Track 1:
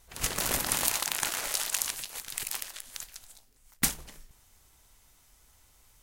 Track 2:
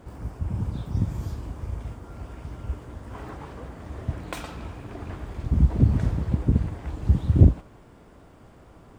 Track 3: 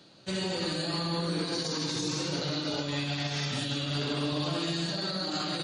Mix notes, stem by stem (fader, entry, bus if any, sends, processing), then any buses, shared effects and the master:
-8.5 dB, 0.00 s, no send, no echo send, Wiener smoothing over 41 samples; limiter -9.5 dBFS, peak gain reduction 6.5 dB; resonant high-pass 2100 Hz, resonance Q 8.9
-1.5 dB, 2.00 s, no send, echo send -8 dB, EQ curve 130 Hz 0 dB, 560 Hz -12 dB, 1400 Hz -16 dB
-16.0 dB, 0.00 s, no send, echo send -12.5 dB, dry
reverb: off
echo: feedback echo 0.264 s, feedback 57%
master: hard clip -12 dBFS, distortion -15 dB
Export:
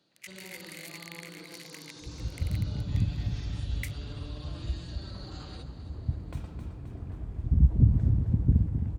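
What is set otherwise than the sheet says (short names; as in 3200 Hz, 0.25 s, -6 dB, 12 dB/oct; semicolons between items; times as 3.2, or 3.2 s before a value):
stem 1 -8.5 dB -> -18.5 dB; master: missing hard clip -12 dBFS, distortion -15 dB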